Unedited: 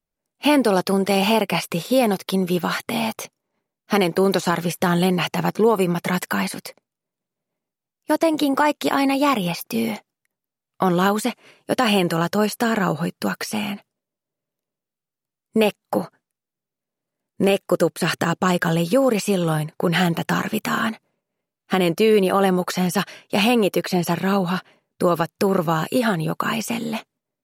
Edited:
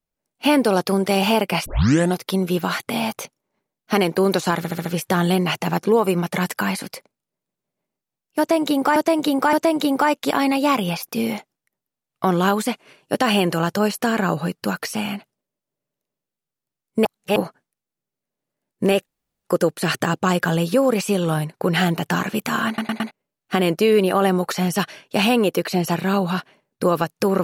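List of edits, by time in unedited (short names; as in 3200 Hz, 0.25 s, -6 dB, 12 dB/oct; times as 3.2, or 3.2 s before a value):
1.66 tape start 0.49 s
4.57 stutter 0.07 s, 5 plays
8.11–8.68 loop, 3 plays
15.63–15.94 reverse
17.64 insert room tone 0.39 s
20.86 stutter in place 0.11 s, 4 plays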